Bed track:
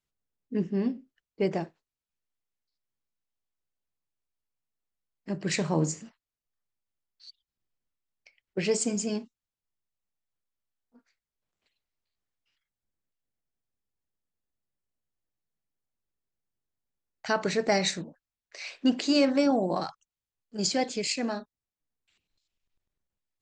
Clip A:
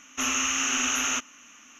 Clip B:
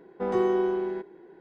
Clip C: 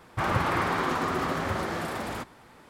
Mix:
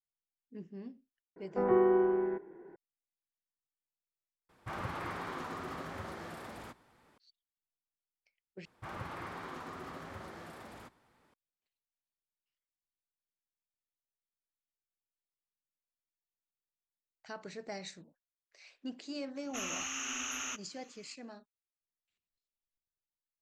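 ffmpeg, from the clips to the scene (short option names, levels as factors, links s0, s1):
-filter_complex "[3:a]asplit=2[s0][s1];[0:a]volume=0.126[s2];[2:a]lowpass=f=2100:w=0.5412,lowpass=f=2100:w=1.3066[s3];[s2]asplit=3[s4][s5][s6];[s4]atrim=end=4.494[s7];[s0]atrim=end=2.69,asetpts=PTS-STARTPTS,volume=0.211[s8];[s5]atrim=start=7.176:end=8.654[s9];[s1]atrim=end=2.69,asetpts=PTS-STARTPTS,volume=0.141[s10];[s6]atrim=start=11.336[s11];[s3]atrim=end=1.4,asetpts=PTS-STARTPTS,volume=0.794,afade=t=in:d=0.004:c=hsin,afade=t=out:st=1.396:d=0.004:c=hsin,adelay=1360[s12];[1:a]atrim=end=1.79,asetpts=PTS-STARTPTS,volume=0.237,afade=t=in:d=0.004:c=hsin,afade=t=out:st=1.786:d=0.004:c=hsin,adelay=19360[s13];[s7][s8]acrossfade=d=0.004:c1=hsin:c2=hsin[s14];[s14][s9]acrossfade=d=0.004:c1=hsin:c2=hsin[s15];[s15][s10]acrossfade=d=0.004:c1=hsin:c2=hsin[s16];[s16][s11]acrossfade=d=0.004:c1=hsin:c2=hsin[s17];[s17][s12][s13]amix=inputs=3:normalize=0"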